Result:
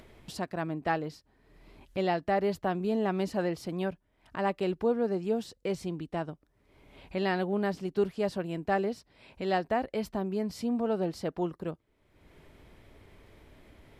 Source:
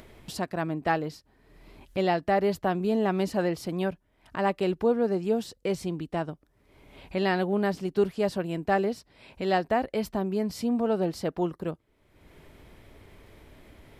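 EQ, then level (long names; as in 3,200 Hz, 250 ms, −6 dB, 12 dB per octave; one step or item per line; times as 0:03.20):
high-shelf EQ 11,000 Hz −6 dB
−3.5 dB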